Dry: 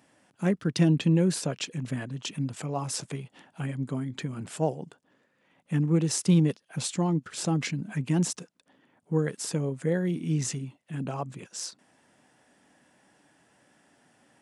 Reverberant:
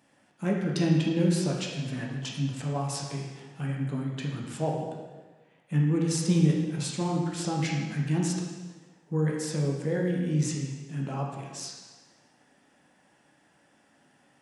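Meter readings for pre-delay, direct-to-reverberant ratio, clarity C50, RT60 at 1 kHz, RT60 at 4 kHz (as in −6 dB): 5 ms, −2.0 dB, 1.5 dB, 1.3 s, 1.2 s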